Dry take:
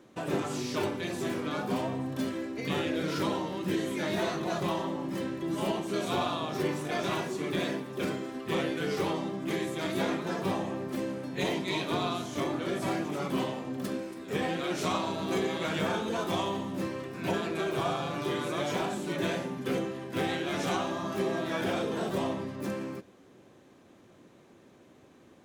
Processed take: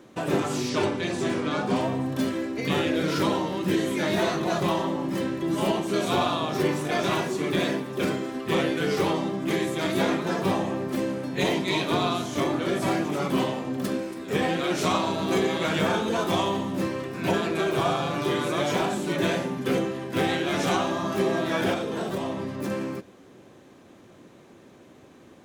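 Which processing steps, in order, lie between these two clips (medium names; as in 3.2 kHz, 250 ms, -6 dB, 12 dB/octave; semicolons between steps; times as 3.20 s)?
0.69–1.81 s: Savitzky-Golay filter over 9 samples; 21.73–22.71 s: compression, threshold -32 dBFS, peak gain reduction 6.5 dB; trim +6 dB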